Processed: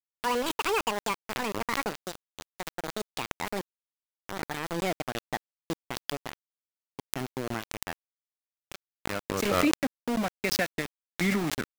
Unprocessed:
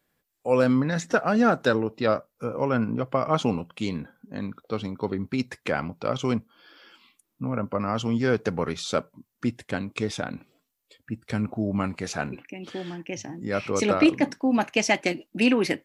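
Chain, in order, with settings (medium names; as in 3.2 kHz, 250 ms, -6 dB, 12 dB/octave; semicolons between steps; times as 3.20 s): gliding tape speed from 195% -> 74%; small samples zeroed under -22.5 dBFS; swell ahead of each attack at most 28 dB/s; trim -7 dB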